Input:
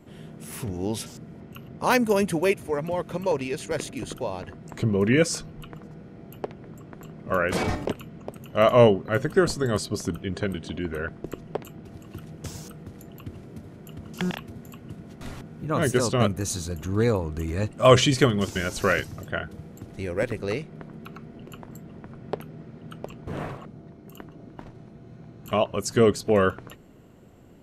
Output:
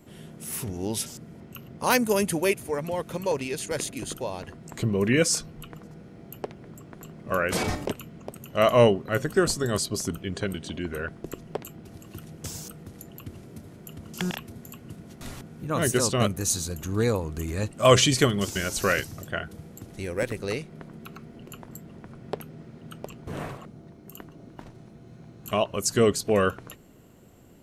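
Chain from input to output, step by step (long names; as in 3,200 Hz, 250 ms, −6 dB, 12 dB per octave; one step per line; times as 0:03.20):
high-shelf EQ 4,700 Hz +10.5 dB
level −2 dB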